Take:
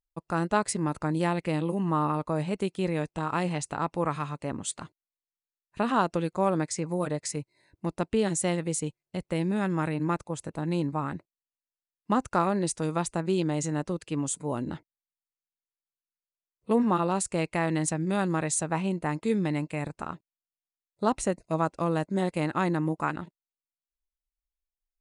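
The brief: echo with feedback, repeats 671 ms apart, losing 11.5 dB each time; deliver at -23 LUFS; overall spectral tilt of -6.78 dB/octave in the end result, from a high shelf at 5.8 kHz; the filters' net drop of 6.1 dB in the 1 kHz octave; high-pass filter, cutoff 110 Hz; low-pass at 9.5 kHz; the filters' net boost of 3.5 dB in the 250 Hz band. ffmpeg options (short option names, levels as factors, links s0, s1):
-af "highpass=110,lowpass=9500,equalizer=f=250:t=o:g=6,equalizer=f=1000:t=o:g=-8,highshelf=f=5800:g=-8,aecho=1:1:671|1342|2013:0.266|0.0718|0.0194,volume=1.78"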